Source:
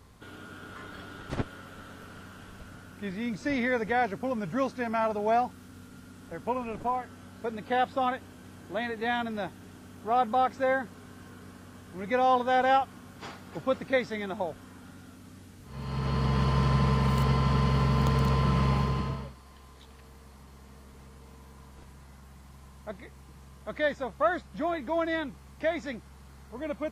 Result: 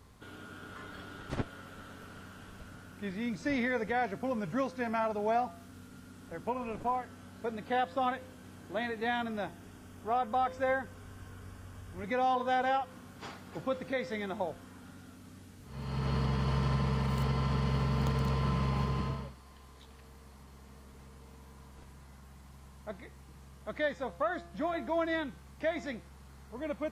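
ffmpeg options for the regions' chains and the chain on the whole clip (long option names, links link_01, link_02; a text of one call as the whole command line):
ffmpeg -i in.wav -filter_complex "[0:a]asettb=1/sr,asplit=3[link_01][link_02][link_03];[link_01]atrim=end=9.264[link_04];[link_02]atrim=start=9.26:end=12.04,asetpts=PTS-STARTPTS,afade=type=in:duration=0.004:curve=qsin,afade=type=out:start_time=2.776:duration=0.004:curve=qsin,bandreject=frequency=4100:width=8.6,asubboost=boost=9.5:cutoff=76[link_05];[link_03]atrim=start=12.036[link_06];[link_04][link_05]acrossfade=duration=0.004:curve1=hsin:curve2=qsin[link_07];[link_07][link_06]acrossfade=duration=0.004:curve1=qsin:curve2=hsin,bandreject=frequency=171.3:width_type=h:width=4,bandreject=frequency=342.6:width_type=h:width=4,bandreject=frequency=513.9:width_type=h:width=4,bandreject=frequency=685.2:width_type=h:width=4,bandreject=frequency=856.5:width_type=h:width=4,bandreject=frequency=1027.8:width_type=h:width=4,bandreject=frequency=1199.1:width_type=h:width=4,bandreject=frequency=1370.4:width_type=h:width=4,bandreject=frequency=1541.7:width_type=h:width=4,bandreject=frequency=1713:width_type=h:width=4,bandreject=frequency=1884.3:width_type=h:width=4,bandreject=frequency=2055.6:width_type=h:width=4,bandreject=frequency=2226.9:width_type=h:width=4,bandreject=frequency=2398.2:width_type=h:width=4,bandreject=frequency=2569.5:width_type=h:width=4,bandreject=frequency=2740.8:width_type=h:width=4,bandreject=frequency=2912.1:width_type=h:width=4,bandreject=frequency=3083.4:width_type=h:width=4,bandreject=frequency=3254.7:width_type=h:width=4,bandreject=frequency=3426:width_type=h:width=4,bandreject=frequency=3597.3:width_type=h:width=4,bandreject=frequency=3768.6:width_type=h:width=4,bandreject=frequency=3939.9:width_type=h:width=4,bandreject=frequency=4111.2:width_type=h:width=4,bandreject=frequency=4282.5:width_type=h:width=4,bandreject=frequency=4453.8:width_type=h:width=4,bandreject=frequency=4625.1:width_type=h:width=4,bandreject=frequency=4796.4:width_type=h:width=4,bandreject=frequency=4967.7:width_type=h:width=4,bandreject=frequency=5139:width_type=h:width=4,bandreject=frequency=5310.3:width_type=h:width=4,bandreject=frequency=5481.6:width_type=h:width=4,bandreject=frequency=5652.9:width_type=h:width=4,alimiter=limit=-19dB:level=0:latency=1:release=188,volume=-2.5dB" out.wav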